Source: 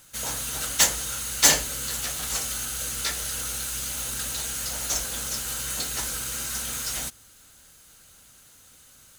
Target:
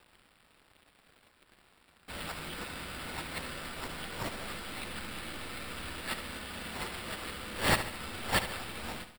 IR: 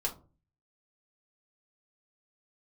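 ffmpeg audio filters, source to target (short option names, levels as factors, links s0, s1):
-filter_complex "[0:a]areverse,lowpass=6600,aecho=1:1:7.2:0.37,asplit=2[s0][s1];[s1]acompressor=threshold=0.00891:ratio=6,volume=0.794[s2];[s0][s2]amix=inputs=2:normalize=0,aeval=exprs='sgn(val(0))*max(abs(val(0))-0.00447,0)':c=same,acompressor=mode=upward:threshold=0.00891:ratio=2.5,afreqshift=-59,acrusher=samples=7:mix=1:aa=0.000001,asplit=2[s3][s4];[s4]aecho=0:1:72|144|216|288|360|432:0.282|0.149|0.0792|0.042|0.0222|0.0118[s5];[s3][s5]amix=inputs=2:normalize=0,volume=0.398"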